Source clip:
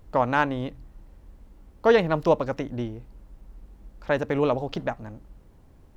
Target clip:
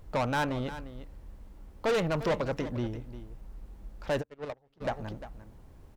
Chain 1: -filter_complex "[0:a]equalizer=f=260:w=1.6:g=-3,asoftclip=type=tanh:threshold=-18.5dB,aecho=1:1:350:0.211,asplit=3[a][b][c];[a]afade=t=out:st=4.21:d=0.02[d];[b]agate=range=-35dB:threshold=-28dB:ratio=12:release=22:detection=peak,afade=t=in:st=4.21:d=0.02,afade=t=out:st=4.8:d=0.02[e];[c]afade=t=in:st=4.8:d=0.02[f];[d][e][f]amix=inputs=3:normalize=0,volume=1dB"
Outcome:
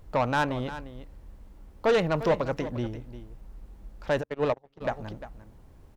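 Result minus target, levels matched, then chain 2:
soft clip: distortion -5 dB
-filter_complex "[0:a]equalizer=f=260:w=1.6:g=-3,asoftclip=type=tanh:threshold=-25dB,aecho=1:1:350:0.211,asplit=3[a][b][c];[a]afade=t=out:st=4.21:d=0.02[d];[b]agate=range=-35dB:threshold=-28dB:ratio=12:release=22:detection=peak,afade=t=in:st=4.21:d=0.02,afade=t=out:st=4.8:d=0.02[e];[c]afade=t=in:st=4.8:d=0.02[f];[d][e][f]amix=inputs=3:normalize=0,volume=1dB"

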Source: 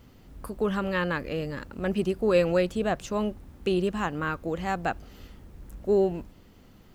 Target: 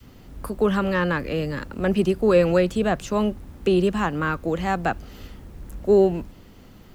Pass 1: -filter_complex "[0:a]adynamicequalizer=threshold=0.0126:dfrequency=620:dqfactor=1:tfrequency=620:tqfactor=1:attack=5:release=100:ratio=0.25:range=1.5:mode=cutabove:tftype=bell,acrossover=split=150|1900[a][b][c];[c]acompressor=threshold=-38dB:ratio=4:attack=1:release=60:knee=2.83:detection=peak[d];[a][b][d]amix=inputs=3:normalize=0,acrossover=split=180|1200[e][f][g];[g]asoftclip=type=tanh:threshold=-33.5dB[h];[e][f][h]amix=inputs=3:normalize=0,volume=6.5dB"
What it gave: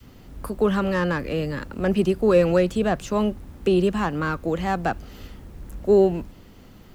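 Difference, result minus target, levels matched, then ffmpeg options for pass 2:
soft clip: distortion +14 dB
-filter_complex "[0:a]adynamicequalizer=threshold=0.0126:dfrequency=620:dqfactor=1:tfrequency=620:tqfactor=1:attack=5:release=100:ratio=0.25:range=1.5:mode=cutabove:tftype=bell,acrossover=split=150|1900[a][b][c];[c]acompressor=threshold=-38dB:ratio=4:attack=1:release=60:knee=2.83:detection=peak[d];[a][b][d]amix=inputs=3:normalize=0,acrossover=split=180|1200[e][f][g];[g]asoftclip=type=tanh:threshold=-23dB[h];[e][f][h]amix=inputs=3:normalize=0,volume=6.5dB"

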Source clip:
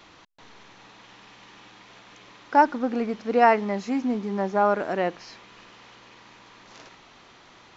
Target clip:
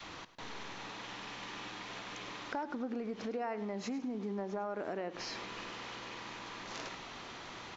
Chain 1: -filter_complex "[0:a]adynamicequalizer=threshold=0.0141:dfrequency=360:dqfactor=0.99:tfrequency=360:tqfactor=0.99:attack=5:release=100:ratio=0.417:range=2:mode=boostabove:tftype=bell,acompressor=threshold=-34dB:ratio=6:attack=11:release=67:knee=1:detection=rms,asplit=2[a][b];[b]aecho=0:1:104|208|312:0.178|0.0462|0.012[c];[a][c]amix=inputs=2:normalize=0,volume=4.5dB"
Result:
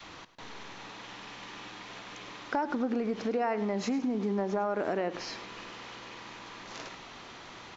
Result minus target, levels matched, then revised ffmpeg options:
compressor: peak gain reduction -8 dB
-filter_complex "[0:a]adynamicequalizer=threshold=0.0141:dfrequency=360:dqfactor=0.99:tfrequency=360:tqfactor=0.99:attack=5:release=100:ratio=0.417:range=2:mode=boostabove:tftype=bell,acompressor=threshold=-43.5dB:ratio=6:attack=11:release=67:knee=1:detection=rms,asplit=2[a][b];[b]aecho=0:1:104|208|312:0.178|0.0462|0.012[c];[a][c]amix=inputs=2:normalize=0,volume=4.5dB"

